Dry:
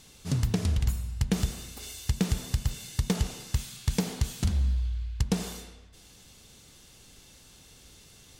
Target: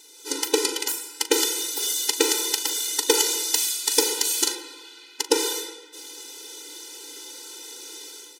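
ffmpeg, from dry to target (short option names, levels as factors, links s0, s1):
-filter_complex "[0:a]asetnsamples=n=441:p=0,asendcmd='3.14 highshelf g 12;4.55 highshelf g 3.5',highshelf=f=3800:g=7,dynaudnorm=f=130:g=5:m=3.98,asplit=2[s0][s1];[s1]adelay=40,volume=0.224[s2];[s0][s2]amix=inputs=2:normalize=0,afftfilt=real='re*eq(mod(floor(b*sr/1024/260),2),1)':imag='im*eq(mod(floor(b*sr/1024/260),2),1)':win_size=1024:overlap=0.75,volume=1.58"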